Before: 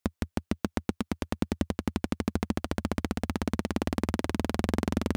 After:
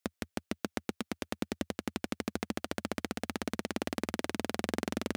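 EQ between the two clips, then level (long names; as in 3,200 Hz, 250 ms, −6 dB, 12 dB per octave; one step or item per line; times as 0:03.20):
high-pass filter 460 Hz 6 dB per octave
parametric band 1,000 Hz −5.5 dB 0.62 octaves
0.0 dB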